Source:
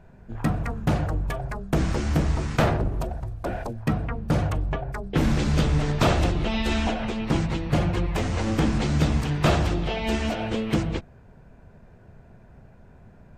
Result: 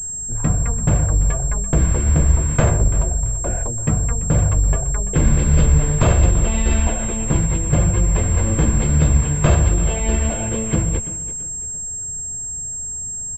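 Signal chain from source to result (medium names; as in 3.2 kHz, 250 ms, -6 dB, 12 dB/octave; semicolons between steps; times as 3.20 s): bass shelf 200 Hz +9 dB; comb 1.9 ms, depth 33%; feedback delay 337 ms, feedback 32%, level -15 dB; class-D stage that switches slowly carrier 7.5 kHz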